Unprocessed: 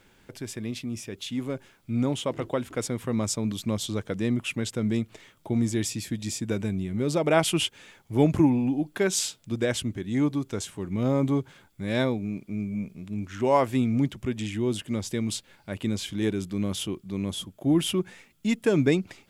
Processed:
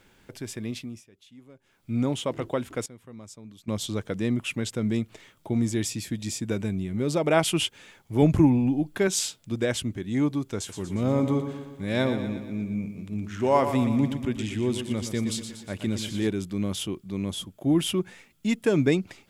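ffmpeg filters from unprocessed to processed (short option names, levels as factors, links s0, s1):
-filter_complex "[0:a]asettb=1/sr,asplit=3[s0][s1][s2];[s0]atrim=end=8.224[s3];[s1]atrim=start=8.22:end=9.08,asetpts=PTS-STARTPTS,afade=t=in:d=0.004:c=qsin,afade=t=out:st=0.856:d=0.004:c=qsin,lowshelf=f=97:g=11.5[s4];[s2]atrim=start=9.076[s5];[s3][s4]acrossfade=d=0.004:c1=hsin:c2=qsin[s6];[s6][s5]acrossfade=d=0.004:c1=qsin:c2=hsin,asettb=1/sr,asplit=3[s7][s8][s9];[s7]atrim=end=10.574[s10];[s8]atrim=start=10.57:end=16.27,asetpts=PTS-STARTPTS,afade=t=in:d=0.004:c=qsin,afade=t=out:st=5.696:d=0.004:c=qsin,aecho=1:1:119|238|357|476|595|714:0.355|0.195|0.107|0.059|0.0325|0.0179,atrim=end_sample=251370[s11];[s9]atrim=start=16.266[s12];[s10][s11]acrossfade=d=0.004:c1=hsin:c2=qsin[s13];[s13][s12]acrossfade=d=0.004:c1=qsin:c2=hsin,asplit=5[s14][s15][s16][s17][s18];[s14]atrim=end=1.05,asetpts=PTS-STARTPTS,afade=t=out:st=0.75:d=0.3:silence=0.105925[s19];[s15]atrim=start=1.05:end=1.62,asetpts=PTS-STARTPTS,volume=0.106[s20];[s16]atrim=start=1.62:end=2.86,asetpts=PTS-STARTPTS,afade=t=in:d=0.3:silence=0.105925,afade=t=out:st=0.96:d=0.28:c=log:silence=0.141254[s21];[s17]atrim=start=2.86:end=3.68,asetpts=PTS-STARTPTS,volume=0.141[s22];[s18]atrim=start=3.68,asetpts=PTS-STARTPTS,afade=t=in:d=0.28:c=log:silence=0.141254[s23];[s19][s20][s21][s22][s23]concat=n=5:v=0:a=1"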